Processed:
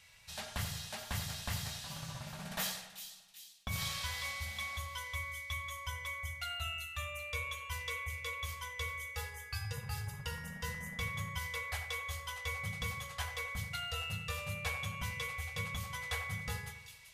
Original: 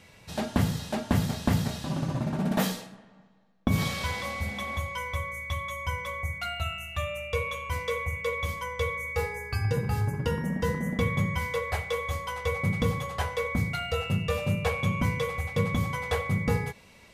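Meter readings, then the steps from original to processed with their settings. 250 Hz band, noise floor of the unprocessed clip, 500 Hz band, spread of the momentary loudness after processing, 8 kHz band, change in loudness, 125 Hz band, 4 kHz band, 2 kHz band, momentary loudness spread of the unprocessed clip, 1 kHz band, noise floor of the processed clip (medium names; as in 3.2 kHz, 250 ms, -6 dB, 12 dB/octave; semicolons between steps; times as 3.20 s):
-21.0 dB, -55 dBFS, -18.5 dB, 5 LU, -1.5 dB, -10.0 dB, -13.5 dB, -3.0 dB, -6.0 dB, 6 LU, -10.5 dB, -56 dBFS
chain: amplifier tone stack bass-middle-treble 10-0-10; two-band feedback delay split 2.7 kHz, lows 88 ms, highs 384 ms, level -9.5 dB; trim -1.5 dB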